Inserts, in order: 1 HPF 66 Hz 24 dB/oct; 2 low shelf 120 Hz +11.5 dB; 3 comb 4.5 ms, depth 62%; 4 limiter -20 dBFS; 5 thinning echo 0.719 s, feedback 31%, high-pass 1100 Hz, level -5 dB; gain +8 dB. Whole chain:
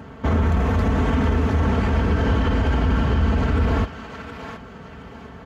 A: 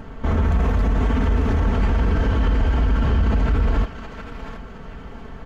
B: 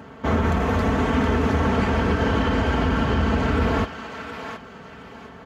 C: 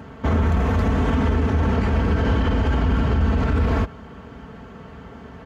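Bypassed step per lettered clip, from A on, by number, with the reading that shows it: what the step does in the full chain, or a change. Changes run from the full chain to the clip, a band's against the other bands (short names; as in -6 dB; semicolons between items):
1, 125 Hz band +2.0 dB; 2, 125 Hz band -6.5 dB; 5, echo-to-direct -7.0 dB to none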